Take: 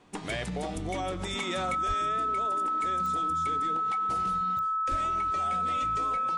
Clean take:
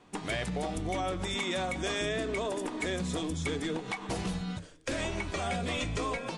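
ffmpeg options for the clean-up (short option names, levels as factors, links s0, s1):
-filter_complex "[0:a]adeclick=t=4,bandreject=f=1300:w=30,asplit=3[s0][s1][s2];[s0]afade=t=out:st=1.87:d=0.02[s3];[s1]highpass=f=140:w=0.5412,highpass=f=140:w=1.3066,afade=t=in:st=1.87:d=0.02,afade=t=out:st=1.99:d=0.02[s4];[s2]afade=t=in:st=1.99:d=0.02[s5];[s3][s4][s5]amix=inputs=3:normalize=0,asplit=3[s6][s7][s8];[s6]afade=t=out:st=4.9:d=0.02[s9];[s7]highpass=f=140:w=0.5412,highpass=f=140:w=1.3066,afade=t=in:st=4.9:d=0.02,afade=t=out:st=5.02:d=0.02[s10];[s8]afade=t=in:st=5.02:d=0.02[s11];[s9][s10][s11]amix=inputs=3:normalize=0,asetnsamples=n=441:p=0,asendcmd='1.75 volume volume 7.5dB',volume=1"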